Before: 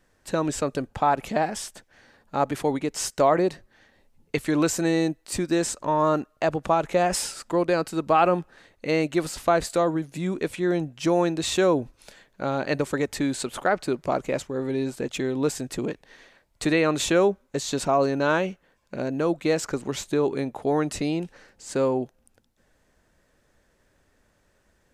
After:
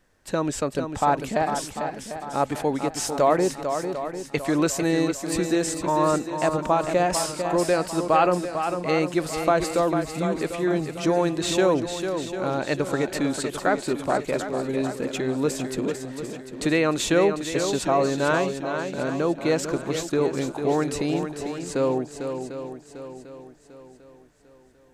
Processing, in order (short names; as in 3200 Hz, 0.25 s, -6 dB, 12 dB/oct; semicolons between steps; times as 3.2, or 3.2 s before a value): swung echo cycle 0.747 s, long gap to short 1.5:1, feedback 39%, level -7.5 dB